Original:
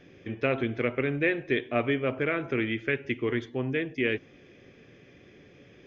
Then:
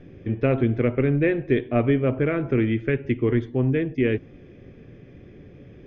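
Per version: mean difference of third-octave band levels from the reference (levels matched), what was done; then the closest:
4.0 dB: spectral tilt −3.5 dB per octave
level +1.5 dB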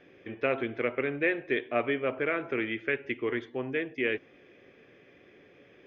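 2.5 dB: bass and treble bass −11 dB, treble −12 dB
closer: second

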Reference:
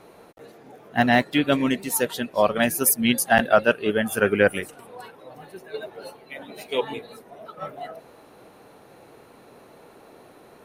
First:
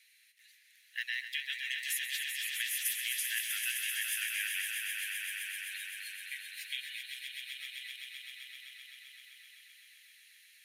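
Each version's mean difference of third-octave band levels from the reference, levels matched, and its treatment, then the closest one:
23.0 dB: Butterworth high-pass 1,800 Hz 72 dB per octave
downward compressor, threshold −30 dBFS, peak gain reduction 14.5 dB
echo that builds up and dies away 129 ms, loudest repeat 5, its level −7 dB
level −3.5 dB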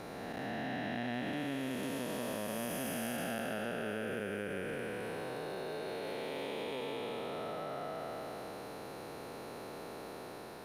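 15.0 dB: spectrum smeared in time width 815 ms
parametric band 4,900 Hz +5 dB 0.54 octaves
downward compressor 6 to 1, threshold −42 dBFS, peak gain reduction 17.5 dB
level +5.5 dB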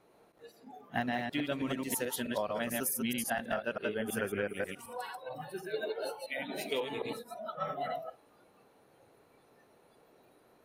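5.5 dB: delay that plays each chunk backwards 108 ms, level −3 dB
noise reduction from a noise print of the clip's start 16 dB
downward compressor 10 to 1, threshold −31 dBFS, peak gain reduction 21 dB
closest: third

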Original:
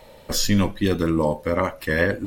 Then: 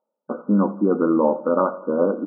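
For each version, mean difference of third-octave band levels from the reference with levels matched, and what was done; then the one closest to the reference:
14.0 dB: noise gate −39 dBFS, range −39 dB
reversed playback
upward compression, threshold −29 dBFS
reversed playback
linear-phase brick-wall band-pass 180–1,500 Hz
repeating echo 85 ms, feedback 54%, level −17.5 dB
level +3.5 dB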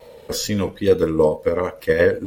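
4.5 dB: high-pass filter 41 Hz
parametric band 460 Hz +14.5 dB 0.26 octaves
in parallel at +1 dB: output level in coarse steps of 15 dB
on the sum: tape wow and flutter 45 cents
level −5.5 dB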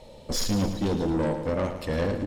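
5.5 dB: low-pass filter 7,300 Hz 12 dB per octave
parametric band 1,600 Hz −13 dB 1.4 octaves
soft clipping −23.5 dBFS, distortion −8 dB
on a send: repeating echo 111 ms, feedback 59%, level −10 dB
on the sum: level +1.5 dB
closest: second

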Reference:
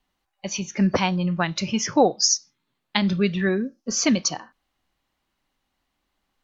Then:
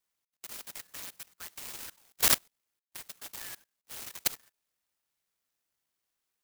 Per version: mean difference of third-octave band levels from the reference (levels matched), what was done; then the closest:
16.5 dB: inverse Chebyshev high-pass filter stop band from 720 Hz, stop band 50 dB
output level in coarse steps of 21 dB
converter with an unsteady clock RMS 0.14 ms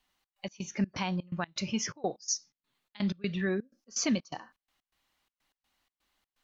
4.5 dB: brickwall limiter −12 dBFS, peak gain reduction 7.5 dB
gate pattern "xx.x.xx.xx.x.x" 125 BPM −24 dB
one half of a high-frequency compander encoder only
level −7.5 dB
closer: second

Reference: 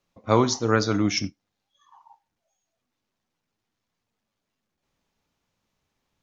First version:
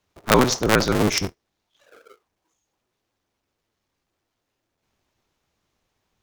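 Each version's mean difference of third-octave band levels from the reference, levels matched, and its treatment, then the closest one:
10.0 dB: sub-harmonics by changed cycles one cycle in 2, inverted
level +3 dB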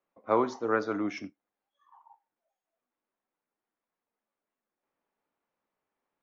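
4.5 dB: three-way crossover with the lows and the highs turned down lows −20 dB, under 260 Hz, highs −20 dB, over 2,200 Hz
level −4 dB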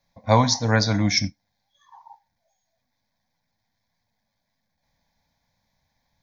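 2.5 dB: phaser with its sweep stopped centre 1,900 Hz, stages 8
level +7 dB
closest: third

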